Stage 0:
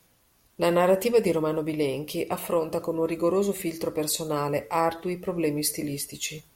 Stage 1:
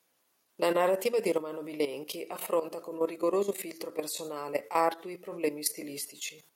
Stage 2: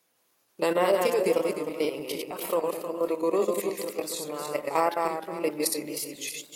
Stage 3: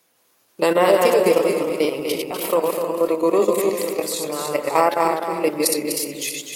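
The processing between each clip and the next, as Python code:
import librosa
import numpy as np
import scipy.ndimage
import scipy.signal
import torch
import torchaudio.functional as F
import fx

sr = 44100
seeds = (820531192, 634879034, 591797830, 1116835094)

y1 = fx.level_steps(x, sr, step_db=12)
y1 = scipy.signal.sosfilt(scipy.signal.butter(2, 310.0, 'highpass', fs=sr, output='sos'), y1)
y2 = fx.reverse_delay_fb(y1, sr, ms=154, feedback_pct=51, wet_db=-3.0)
y2 = fx.wow_flutter(y2, sr, seeds[0], rate_hz=2.1, depth_cents=54.0)
y2 = F.gain(torch.from_numpy(y2), 1.5).numpy()
y3 = y2 + 10.0 ** (-7.5 / 20.0) * np.pad(y2, (int(249 * sr / 1000.0), 0))[:len(y2)]
y3 = F.gain(torch.from_numpy(y3), 7.5).numpy()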